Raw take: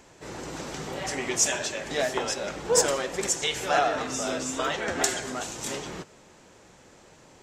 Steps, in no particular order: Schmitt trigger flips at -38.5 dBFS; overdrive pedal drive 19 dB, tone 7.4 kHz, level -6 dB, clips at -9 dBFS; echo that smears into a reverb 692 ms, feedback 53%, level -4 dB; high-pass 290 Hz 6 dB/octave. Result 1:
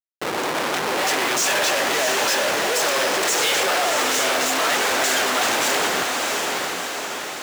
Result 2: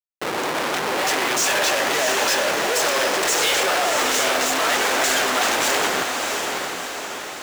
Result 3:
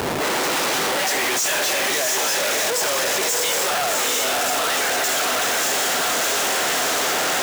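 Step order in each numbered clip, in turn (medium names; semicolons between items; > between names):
Schmitt trigger > echo that smears into a reverb > overdrive pedal > high-pass; Schmitt trigger > high-pass > overdrive pedal > echo that smears into a reverb; echo that smears into a reverb > overdrive pedal > Schmitt trigger > high-pass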